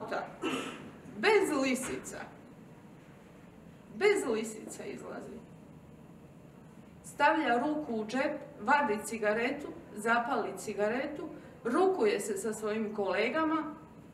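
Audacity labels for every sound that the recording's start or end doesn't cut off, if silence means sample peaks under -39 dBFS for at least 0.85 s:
3.950000	5.380000	sound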